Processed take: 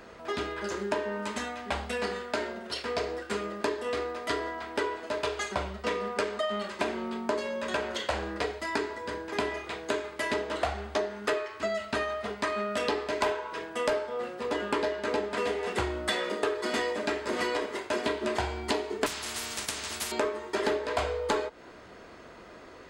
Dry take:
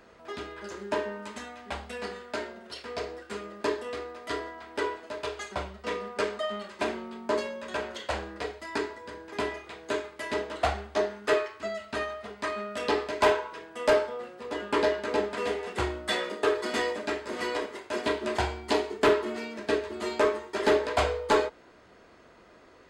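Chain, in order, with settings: compressor 6:1, threshold -33 dBFS, peak gain reduction 14 dB; 19.06–20.12 spectral compressor 10:1; gain +6.5 dB

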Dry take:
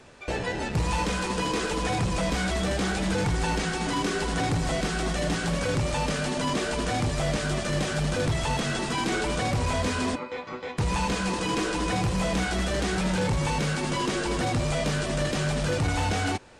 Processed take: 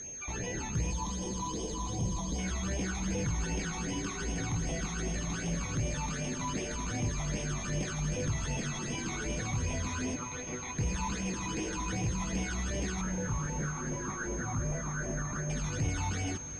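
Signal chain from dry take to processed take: 0.91–2.39 spectral gain 1200–2900 Hz -17 dB; 13.01–15.5 resonant high shelf 2100 Hz -11 dB, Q 3; limiter -27 dBFS, peak gain reduction 11 dB; phaser stages 12, 2.6 Hz, lowest notch 490–1400 Hz; whine 6400 Hz -37 dBFS; air absorption 53 m; diffused feedback echo 0.693 s, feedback 64%, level -15 dB

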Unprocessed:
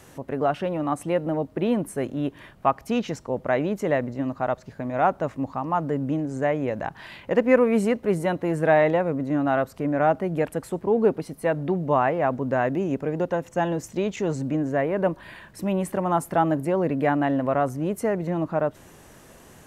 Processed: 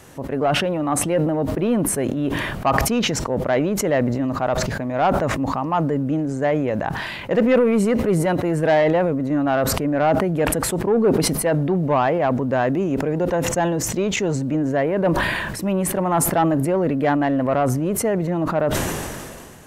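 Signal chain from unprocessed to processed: soft clip -14 dBFS, distortion -17 dB; sustainer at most 28 dB/s; gain +4 dB

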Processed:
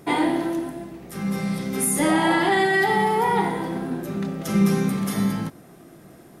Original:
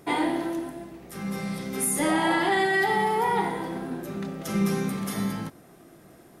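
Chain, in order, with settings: bell 170 Hz +3.5 dB 1.6 oct; gain +3 dB

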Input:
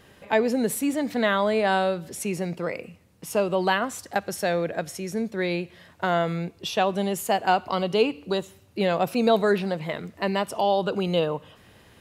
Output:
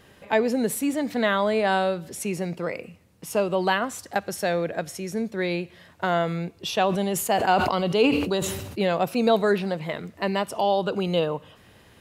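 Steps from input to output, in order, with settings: 6.56–8.82 sustainer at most 43 dB/s

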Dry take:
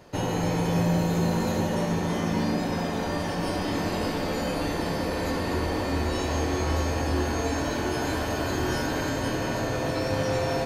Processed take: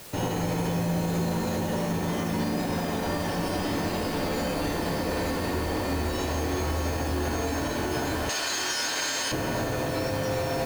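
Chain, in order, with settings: 8.29–9.32 weighting filter ITU-R 468; limiter -20 dBFS, peak gain reduction 6.5 dB; in parallel at -7 dB: requantised 6-bit, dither triangular; on the sum: gain -2.5 dB

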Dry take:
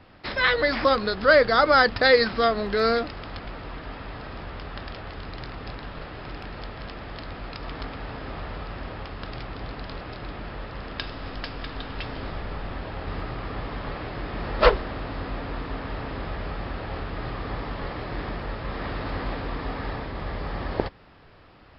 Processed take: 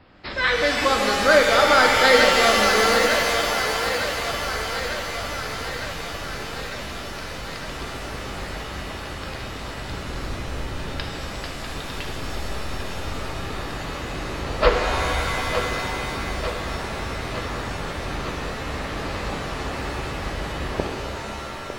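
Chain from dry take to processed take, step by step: 9.87–11.01 octaver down 1 oct, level +4 dB; thinning echo 0.903 s, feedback 70%, high-pass 270 Hz, level -8 dB; shimmer reverb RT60 2.8 s, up +7 st, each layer -2 dB, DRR 2 dB; gain -1 dB

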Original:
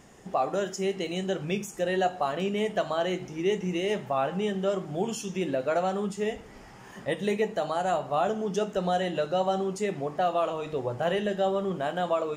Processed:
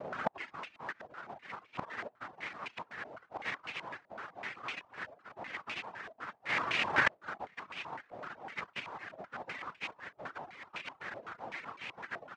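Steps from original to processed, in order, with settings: octaver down 2 oct, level +1 dB; dynamic EQ 320 Hz, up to +4 dB, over -37 dBFS, Q 1.4; noise vocoder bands 1; flipped gate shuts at -27 dBFS, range -34 dB; reverb removal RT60 0.5 s; stepped low-pass 7.9 Hz 650–2500 Hz; gain +16 dB

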